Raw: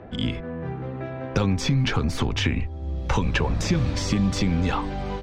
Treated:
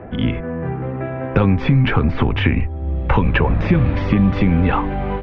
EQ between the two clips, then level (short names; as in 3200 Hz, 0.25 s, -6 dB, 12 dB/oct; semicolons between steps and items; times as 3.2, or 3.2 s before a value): LPF 2600 Hz 24 dB/oct; +7.5 dB